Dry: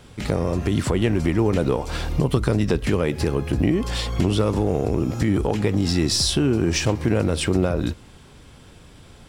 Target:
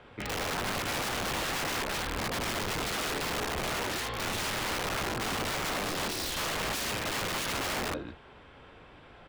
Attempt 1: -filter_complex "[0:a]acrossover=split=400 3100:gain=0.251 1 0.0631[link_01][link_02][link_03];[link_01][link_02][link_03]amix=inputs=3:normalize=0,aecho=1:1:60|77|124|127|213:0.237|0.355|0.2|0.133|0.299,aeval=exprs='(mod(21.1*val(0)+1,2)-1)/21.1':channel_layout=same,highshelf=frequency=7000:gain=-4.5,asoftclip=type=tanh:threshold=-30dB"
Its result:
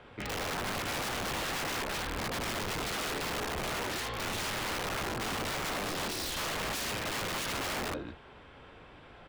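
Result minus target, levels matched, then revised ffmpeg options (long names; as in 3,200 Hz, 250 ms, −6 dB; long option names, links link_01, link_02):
soft clipping: distortion +20 dB
-filter_complex "[0:a]acrossover=split=400 3100:gain=0.251 1 0.0631[link_01][link_02][link_03];[link_01][link_02][link_03]amix=inputs=3:normalize=0,aecho=1:1:60|77|124|127|213:0.237|0.355|0.2|0.133|0.299,aeval=exprs='(mod(21.1*val(0)+1,2)-1)/21.1':channel_layout=same,highshelf=frequency=7000:gain=-4.5,asoftclip=type=tanh:threshold=-18.5dB"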